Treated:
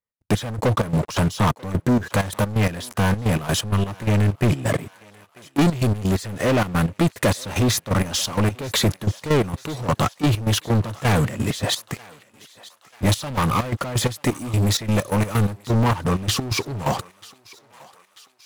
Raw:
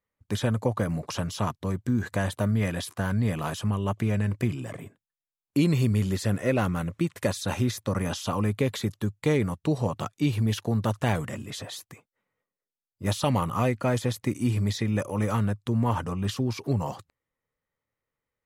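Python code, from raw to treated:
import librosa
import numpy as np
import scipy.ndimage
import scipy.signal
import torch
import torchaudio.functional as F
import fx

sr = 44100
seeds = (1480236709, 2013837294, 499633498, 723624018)

p1 = fx.high_shelf(x, sr, hz=7200.0, db=9.0, at=(14.25, 15.65))
p2 = fx.leveller(p1, sr, passes=5)
p3 = fx.rider(p2, sr, range_db=10, speed_s=0.5)
p4 = fx.step_gate(p3, sr, bpm=129, pattern='x.x..xx.x.', floor_db=-12.0, edge_ms=4.5)
p5 = p4 + fx.echo_thinned(p4, sr, ms=939, feedback_pct=62, hz=700.0, wet_db=-20.0, dry=0)
y = p5 * 10.0 ** (-2.5 / 20.0)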